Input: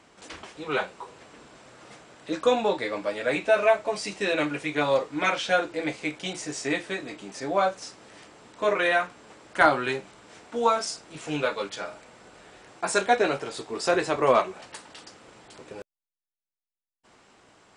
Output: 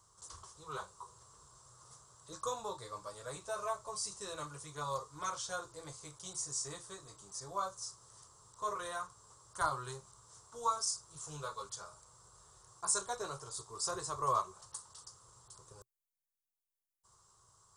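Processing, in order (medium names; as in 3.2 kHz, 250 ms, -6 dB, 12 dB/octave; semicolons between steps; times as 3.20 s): FFT filter 120 Hz 0 dB, 270 Hz -29 dB, 380 Hz -15 dB, 760 Hz -18 dB, 1.1 kHz -1 dB, 1.6 kHz -19 dB, 2.4 kHz -29 dB, 3.4 kHz -14 dB, 6.2 kHz +2 dB, 12 kHz +7 dB; trim -3 dB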